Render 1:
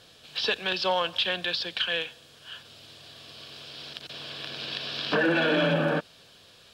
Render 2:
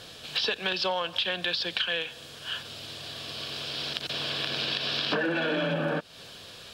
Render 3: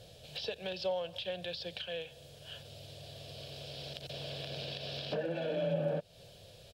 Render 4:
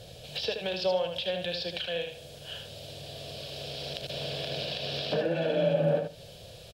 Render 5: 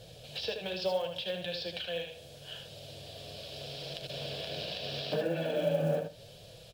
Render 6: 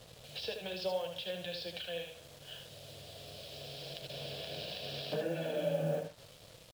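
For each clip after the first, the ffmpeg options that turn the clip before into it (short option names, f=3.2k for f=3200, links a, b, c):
-af "acompressor=threshold=-35dB:ratio=5,volume=8.5dB"
-af "firequalizer=gain_entry='entry(130,0);entry(260,-15);entry(570,-1);entry(1100,-22);entry(2400,-14);entry(13000,-8)':delay=0.05:min_phase=1"
-af "aecho=1:1:76|152|228:0.501|0.0902|0.0162,volume=6.5dB"
-af "acrusher=bits=7:mode=log:mix=0:aa=0.000001,flanger=delay=6.1:depth=5.4:regen=-46:speed=0.76:shape=sinusoidal"
-af "acrusher=bits=7:mix=0:aa=0.5,volume=-4dB"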